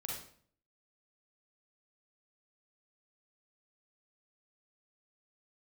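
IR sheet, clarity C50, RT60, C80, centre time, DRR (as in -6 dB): 0.5 dB, 0.55 s, 6.0 dB, 50 ms, -3.0 dB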